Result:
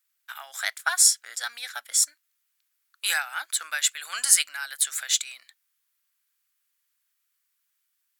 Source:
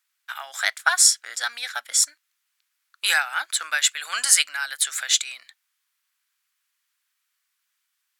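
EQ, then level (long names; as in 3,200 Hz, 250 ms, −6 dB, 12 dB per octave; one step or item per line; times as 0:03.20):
high-shelf EQ 10,000 Hz +12 dB
−6.0 dB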